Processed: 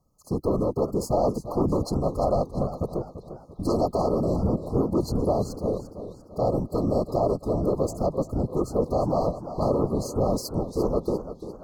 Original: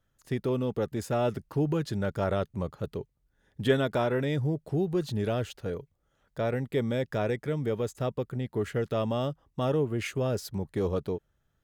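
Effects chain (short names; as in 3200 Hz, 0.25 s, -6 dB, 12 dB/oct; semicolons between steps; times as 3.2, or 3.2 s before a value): bell 690 Hz +4.5 dB 1 oct; in parallel at -10 dB: sine folder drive 13 dB, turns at -10 dBFS; on the sum: whisperiser; brick-wall FIR band-stop 1300–4100 Hz; narrowing echo 0.666 s, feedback 81%, band-pass 2300 Hz, level -22 dB; warbling echo 0.344 s, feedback 45%, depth 105 cents, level -12 dB; gain -4.5 dB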